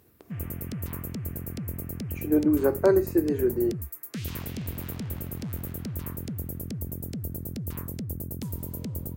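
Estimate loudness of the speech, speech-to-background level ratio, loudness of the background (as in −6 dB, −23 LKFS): −24.5 LKFS, 10.5 dB, −35.0 LKFS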